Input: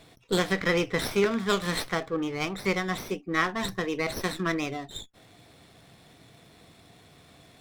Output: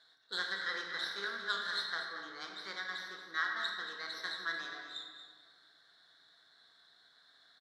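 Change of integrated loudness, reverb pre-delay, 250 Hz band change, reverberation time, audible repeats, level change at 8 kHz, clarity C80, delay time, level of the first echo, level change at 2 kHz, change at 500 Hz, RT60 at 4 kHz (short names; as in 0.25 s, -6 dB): -10.0 dB, 27 ms, -27.5 dB, 2.0 s, 1, -16.5 dB, 3.5 dB, 0.232 s, -10.0 dB, -5.5 dB, -22.5 dB, 1.1 s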